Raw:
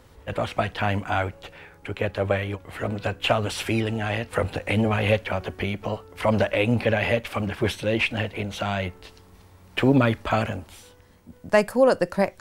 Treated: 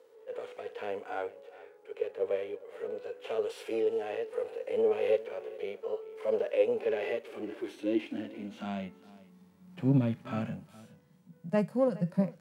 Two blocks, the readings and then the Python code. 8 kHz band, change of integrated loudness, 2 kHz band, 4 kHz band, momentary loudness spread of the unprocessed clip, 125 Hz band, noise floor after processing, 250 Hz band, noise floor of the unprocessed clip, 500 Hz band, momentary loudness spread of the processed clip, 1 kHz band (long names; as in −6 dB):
below −15 dB, −8.5 dB, −18.0 dB, −18.5 dB, 11 LU, −11.0 dB, −60 dBFS, −8.0 dB, −52 dBFS, −6.0 dB, 14 LU, −14.5 dB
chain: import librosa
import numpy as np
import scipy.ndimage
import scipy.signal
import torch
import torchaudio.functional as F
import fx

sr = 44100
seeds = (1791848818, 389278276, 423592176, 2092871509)

y = np.where(x < 0.0, 10.0 ** (-3.0 / 20.0) * x, x)
y = fx.filter_sweep_highpass(y, sr, from_hz=450.0, to_hz=160.0, start_s=6.67, end_s=10.01, q=6.4)
y = fx.hpss(y, sr, part='percussive', gain_db=-17)
y = y + 10.0 ** (-19.5 / 20.0) * np.pad(y, (int(414 * sr / 1000.0), 0))[:len(y)]
y = y * 10.0 ** (-9.0 / 20.0)